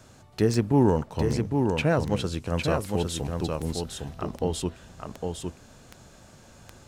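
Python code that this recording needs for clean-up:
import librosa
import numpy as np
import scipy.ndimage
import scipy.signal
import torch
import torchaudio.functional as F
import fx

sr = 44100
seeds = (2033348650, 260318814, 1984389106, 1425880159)

y = fx.fix_declick_ar(x, sr, threshold=10.0)
y = fx.fix_echo_inverse(y, sr, delay_ms=807, level_db=-4.5)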